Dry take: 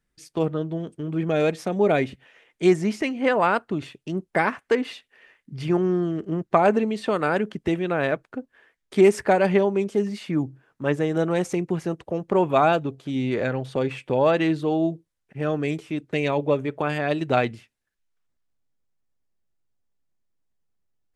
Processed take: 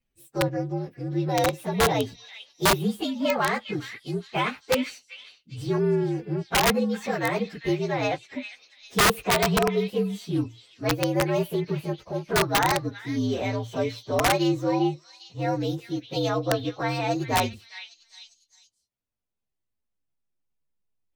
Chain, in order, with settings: frequency axis rescaled in octaves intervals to 119%; repeats whose band climbs or falls 401 ms, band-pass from 2.8 kHz, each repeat 0.7 oct, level -6 dB; integer overflow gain 13.5 dB

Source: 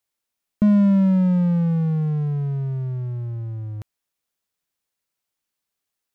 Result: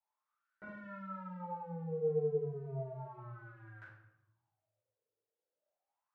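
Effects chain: compression 10:1, threshold -25 dBFS, peak gain reduction 12.5 dB; wah-wah 0.34 Hz 450–1600 Hz, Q 13; simulated room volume 240 m³, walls mixed, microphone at 4.7 m; trim +2.5 dB

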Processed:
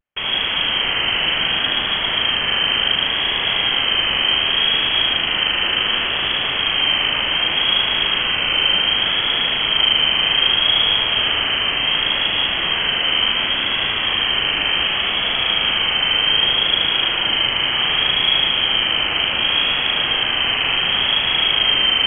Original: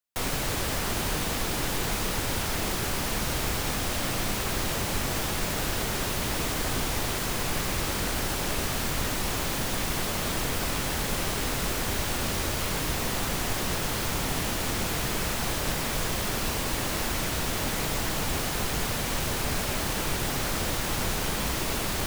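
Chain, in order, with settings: spring tank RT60 3.2 s, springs 38 ms, chirp 25 ms, DRR -3.5 dB; frequency inversion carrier 3.2 kHz; vibrato 0.67 Hz 50 cents; trim +5 dB

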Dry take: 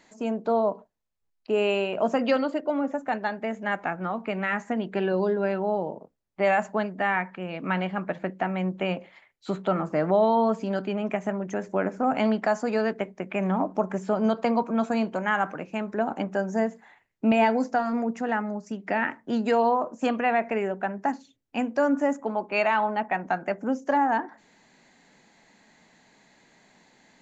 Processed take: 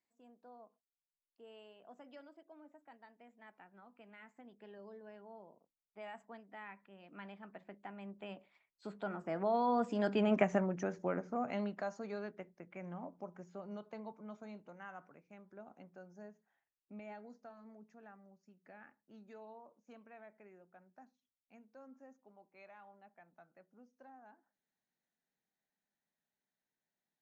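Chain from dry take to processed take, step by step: Doppler pass-by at 10.35 s, 23 m/s, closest 6.1 m; trim -1.5 dB

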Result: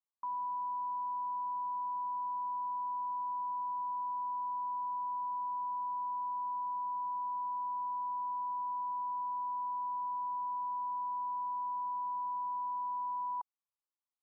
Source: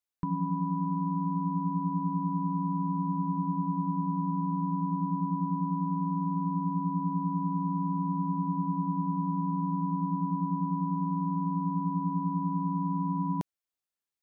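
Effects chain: Butterworth band-pass 1 kHz, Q 2.5

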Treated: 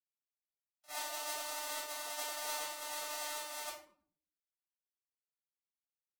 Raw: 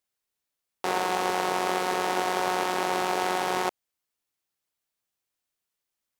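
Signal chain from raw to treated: gate -24 dBFS, range -29 dB; pre-emphasis filter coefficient 0.97; simulated room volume 550 m³, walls furnished, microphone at 3.8 m; formant-preserving pitch shift +8.5 st; trim +1.5 dB

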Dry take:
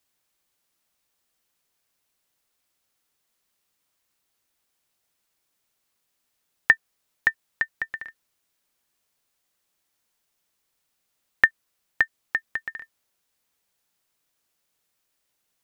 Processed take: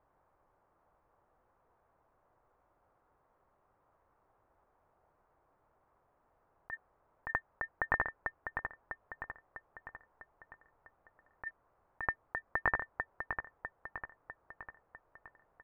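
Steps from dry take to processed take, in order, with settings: rattle on loud lows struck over -35 dBFS, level -11 dBFS; peaking EQ 220 Hz -10.5 dB 1.6 oct; feedback delay 650 ms, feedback 52%, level -14 dB; compressor with a negative ratio -30 dBFS, ratio -1; low-pass 1.1 kHz 24 dB/octave; trim +11.5 dB

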